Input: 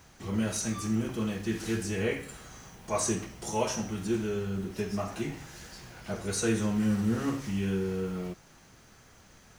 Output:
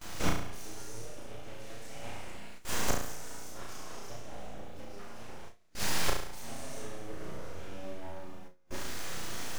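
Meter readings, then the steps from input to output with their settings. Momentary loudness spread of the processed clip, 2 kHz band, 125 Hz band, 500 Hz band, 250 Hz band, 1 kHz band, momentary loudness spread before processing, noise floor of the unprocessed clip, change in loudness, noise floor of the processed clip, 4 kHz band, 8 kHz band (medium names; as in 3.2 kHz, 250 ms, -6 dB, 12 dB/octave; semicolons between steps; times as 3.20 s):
15 LU, -2.0 dB, -10.0 dB, -9.5 dB, -15.0 dB, -2.5 dB, 16 LU, -57 dBFS, -8.5 dB, -47 dBFS, +1.0 dB, -4.5 dB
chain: gated-style reverb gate 450 ms flat, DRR -2.5 dB; full-wave rectifier; inverted gate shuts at -28 dBFS, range -29 dB; on a send: flutter echo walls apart 6 m, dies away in 0.63 s; on the sum: gate with hold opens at -46 dBFS; trim +12.5 dB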